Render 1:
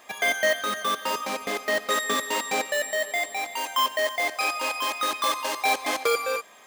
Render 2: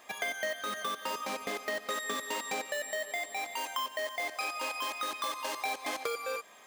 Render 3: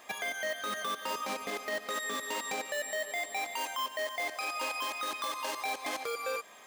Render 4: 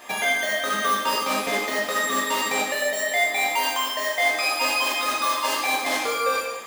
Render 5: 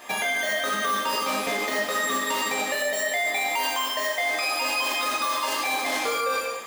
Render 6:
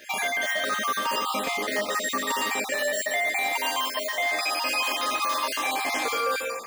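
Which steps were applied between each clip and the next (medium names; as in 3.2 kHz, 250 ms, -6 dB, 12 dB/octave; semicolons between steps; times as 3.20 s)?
compression 4:1, threshold -28 dBFS, peak gain reduction 9 dB; trim -4 dB
peak limiter -27 dBFS, peak gain reduction 7 dB; trim +2 dB
reverberation, pre-delay 3 ms, DRR -4 dB; trim +7 dB
peak limiter -16.5 dBFS, peak gain reduction 6.5 dB
random holes in the spectrogram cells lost 23%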